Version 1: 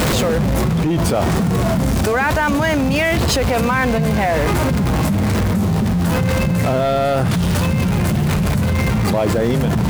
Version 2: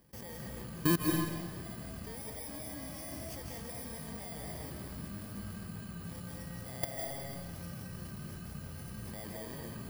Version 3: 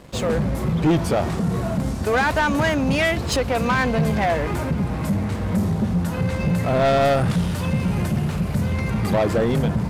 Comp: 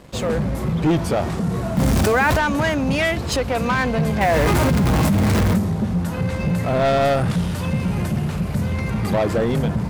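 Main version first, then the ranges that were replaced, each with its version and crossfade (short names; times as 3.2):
3
1.77–2.37 from 1
4.21–5.58 from 1
not used: 2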